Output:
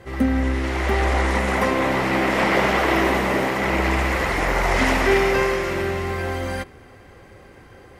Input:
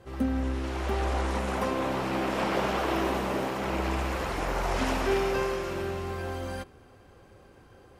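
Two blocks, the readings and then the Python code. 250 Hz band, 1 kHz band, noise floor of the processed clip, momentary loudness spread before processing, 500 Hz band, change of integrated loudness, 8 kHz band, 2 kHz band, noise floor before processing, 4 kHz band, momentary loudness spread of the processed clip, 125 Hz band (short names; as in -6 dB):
+8.0 dB, +8.5 dB, -46 dBFS, 7 LU, +8.0 dB, +9.0 dB, +8.0 dB, +13.5 dB, -55 dBFS, +8.5 dB, 8 LU, +8.0 dB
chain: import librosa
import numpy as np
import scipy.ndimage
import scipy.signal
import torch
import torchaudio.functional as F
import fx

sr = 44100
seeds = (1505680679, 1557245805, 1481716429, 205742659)

y = fx.peak_eq(x, sr, hz=2000.0, db=11.0, octaves=0.3)
y = y * librosa.db_to_amplitude(8.0)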